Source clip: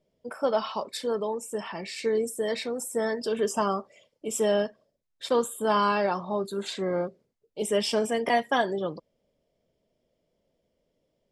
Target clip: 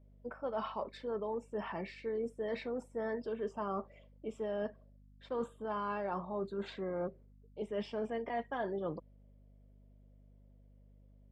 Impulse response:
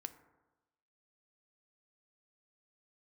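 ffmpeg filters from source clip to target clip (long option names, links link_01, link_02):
-af "lowpass=2000,areverse,acompressor=threshold=-32dB:ratio=6,areverse,aeval=exprs='val(0)+0.00141*(sin(2*PI*50*n/s)+sin(2*PI*2*50*n/s)/2+sin(2*PI*3*50*n/s)/3+sin(2*PI*4*50*n/s)/4+sin(2*PI*5*50*n/s)/5)':channel_layout=same,volume=-2.5dB"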